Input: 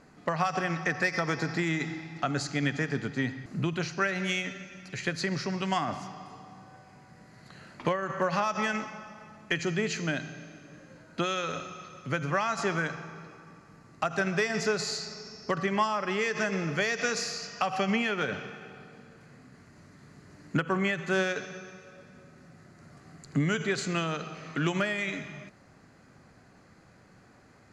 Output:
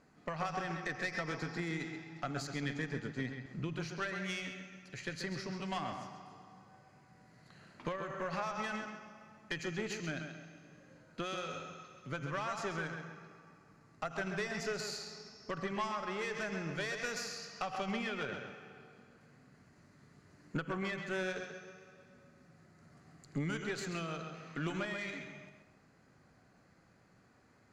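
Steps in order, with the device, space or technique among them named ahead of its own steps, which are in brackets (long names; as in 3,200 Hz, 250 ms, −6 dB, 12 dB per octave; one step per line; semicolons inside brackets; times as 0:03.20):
0:03.26–0:03.74: low-pass filter 7,100 Hz 12 dB per octave
rockabilly slapback (tube saturation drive 20 dB, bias 0.6; tape delay 133 ms, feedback 35%, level −6 dB, low-pass 4,900 Hz)
level −6.5 dB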